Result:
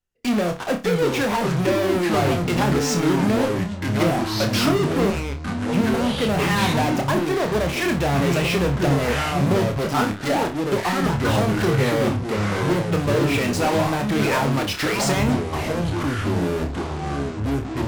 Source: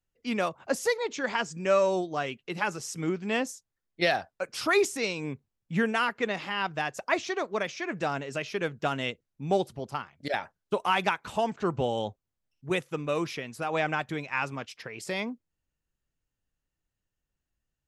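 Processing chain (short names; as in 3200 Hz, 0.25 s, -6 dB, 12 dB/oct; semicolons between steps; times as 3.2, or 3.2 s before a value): treble ducked by the level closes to 310 Hz, closed at -23 dBFS; 5.1–5.75 pre-emphasis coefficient 0.9; in parallel at -11 dB: fuzz box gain 55 dB, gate -54 dBFS; on the sum: echoes that change speed 0.514 s, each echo -5 st, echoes 3; flutter echo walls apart 4.9 m, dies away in 0.25 s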